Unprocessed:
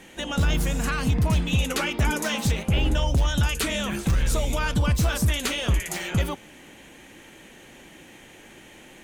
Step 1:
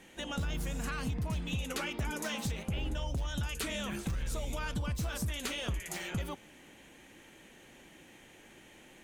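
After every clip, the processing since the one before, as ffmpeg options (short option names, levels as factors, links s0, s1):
-af "acompressor=threshold=0.0708:ratio=6,volume=0.376"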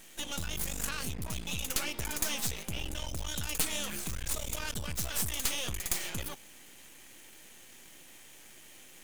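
-af "crystalizer=i=4.5:c=0,aeval=exprs='max(val(0),0)':c=same"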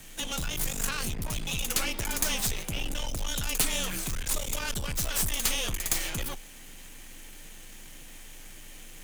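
-filter_complex "[0:a]acrossover=split=210[s0][s1];[s0]acompressor=mode=upward:threshold=0.00562:ratio=2.5[s2];[s2][s1]amix=inputs=2:normalize=0,afreqshift=-22,volume=1.68"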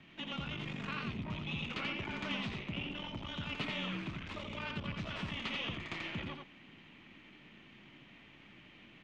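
-filter_complex "[0:a]highpass=110,equalizer=f=210:t=q:w=4:g=3,equalizer=f=500:t=q:w=4:g=-9,equalizer=f=780:t=q:w=4:g=-6,equalizer=f=1600:t=q:w=4:g=-7,lowpass=f=2900:w=0.5412,lowpass=f=2900:w=1.3066,asplit=2[s0][s1];[s1]aecho=0:1:86:0.631[s2];[s0][s2]amix=inputs=2:normalize=0,volume=0.668"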